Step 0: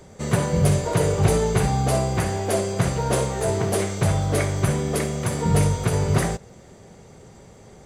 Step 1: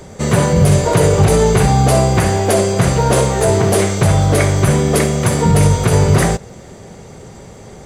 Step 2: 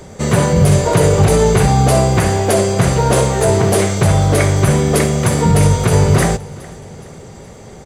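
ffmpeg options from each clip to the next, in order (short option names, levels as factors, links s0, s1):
-af "alimiter=level_in=3.98:limit=0.891:release=50:level=0:latency=1,volume=0.841"
-af "aecho=1:1:418|836|1254:0.0841|0.0404|0.0194"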